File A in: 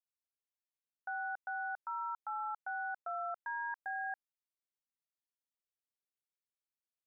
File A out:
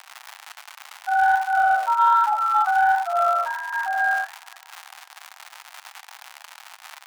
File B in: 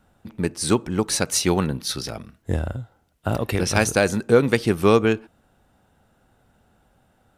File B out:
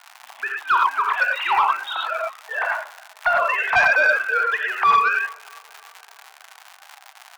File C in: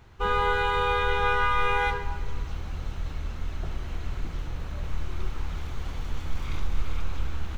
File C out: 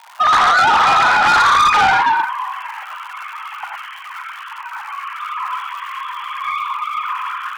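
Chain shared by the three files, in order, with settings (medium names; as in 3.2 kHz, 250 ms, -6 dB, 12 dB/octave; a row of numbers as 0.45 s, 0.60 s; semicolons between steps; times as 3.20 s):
formants replaced by sine waves; compression 2:1, threshold -25 dBFS; tape echo 316 ms, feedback 61%, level -24 dB; gated-style reverb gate 130 ms rising, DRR 0 dB; dynamic bell 1.2 kHz, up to +4 dB, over -40 dBFS, Q 1.2; crackle 190 per s -33 dBFS; elliptic high-pass 780 Hz, stop band 80 dB; flange 1.3 Hz, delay 2.8 ms, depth 8 ms, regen -84%; treble shelf 2.5 kHz -11.5 dB; saturation -28.5 dBFS; peak normalisation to -9 dBFS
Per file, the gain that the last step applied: +22.5 dB, +20.0 dB, +19.5 dB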